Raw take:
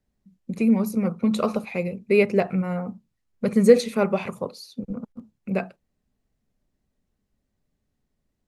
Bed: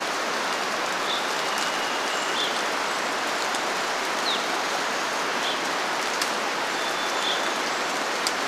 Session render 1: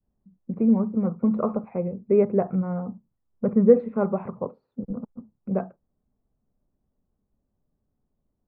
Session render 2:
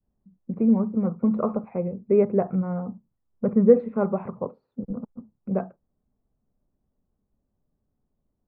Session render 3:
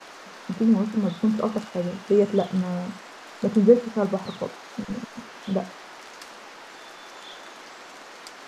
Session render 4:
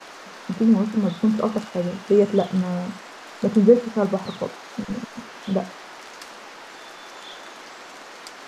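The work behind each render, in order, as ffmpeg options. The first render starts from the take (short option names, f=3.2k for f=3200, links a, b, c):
-af "lowpass=f=1.2k:w=0.5412,lowpass=f=1.2k:w=1.3066,adynamicequalizer=threshold=0.0251:dfrequency=580:dqfactor=0.8:tfrequency=580:tqfactor=0.8:attack=5:release=100:ratio=0.375:range=2:mode=cutabove:tftype=bell"
-af anull
-filter_complex "[1:a]volume=-17dB[a];[0:a][a]amix=inputs=2:normalize=0"
-af "volume=2.5dB,alimiter=limit=-3dB:level=0:latency=1"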